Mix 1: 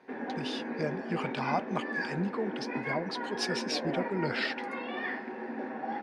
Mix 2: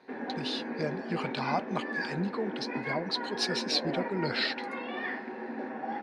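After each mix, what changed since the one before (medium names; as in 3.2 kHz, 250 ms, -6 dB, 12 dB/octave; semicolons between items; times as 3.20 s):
speech: add peaking EQ 4.1 kHz +13 dB 0.23 oct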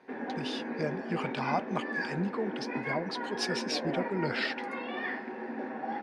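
speech: add peaking EQ 4.1 kHz -13 dB 0.23 oct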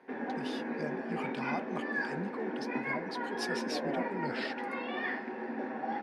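speech -7.0 dB; master: remove low-pass 7.8 kHz 12 dB/octave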